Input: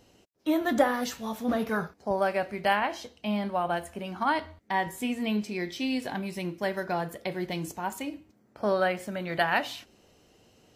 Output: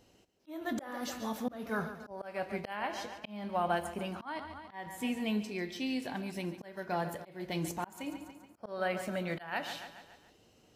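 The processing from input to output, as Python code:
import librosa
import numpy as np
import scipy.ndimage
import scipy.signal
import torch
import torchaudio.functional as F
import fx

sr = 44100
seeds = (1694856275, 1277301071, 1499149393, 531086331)

y = fx.echo_feedback(x, sr, ms=142, feedback_pct=53, wet_db=-14.0)
y = fx.auto_swell(y, sr, attack_ms=380.0)
y = fx.rider(y, sr, range_db=10, speed_s=2.0)
y = y * librosa.db_to_amplitude(-4.0)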